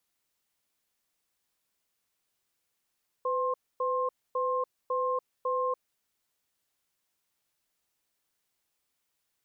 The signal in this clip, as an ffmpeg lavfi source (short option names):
-f lavfi -i "aevalsrc='0.0355*(sin(2*PI*506*t)+sin(2*PI*1060*t))*clip(min(mod(t,0.55),0.29-mod(t,0.55))/0.005,0,1)':d=2.67:s=44100"